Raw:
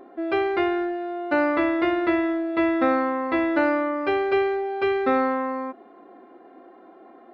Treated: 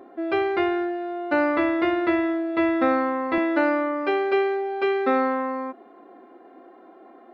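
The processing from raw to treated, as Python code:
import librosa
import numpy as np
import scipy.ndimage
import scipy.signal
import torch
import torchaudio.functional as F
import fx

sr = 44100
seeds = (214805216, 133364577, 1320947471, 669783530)

y = fx.highpass(x, sr, hz=fx.steps((0.0, 43.0), (3.38, 190.0)), slope=24)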